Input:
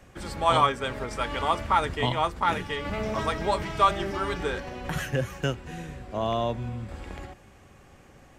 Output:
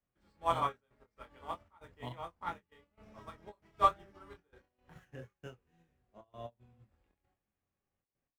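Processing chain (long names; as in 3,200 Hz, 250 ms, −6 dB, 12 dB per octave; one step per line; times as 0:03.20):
running median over 5 samples
dynamic equaliser 3,400 Hz, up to −4 dB, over −41 dBFS, Q 0.92
flanger 0.97 Hz, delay 4.1 ms, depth 9.2 ms, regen −84%
gate pattern "xxxxxx.x.xxxx." 116 BPM −12 dB
ambience of single reflections 24 ms −4 dB, 34 ms −10.5 dB
expander for the loud parts 2.5 to 1, over −40 dBFS
level −1.5 dB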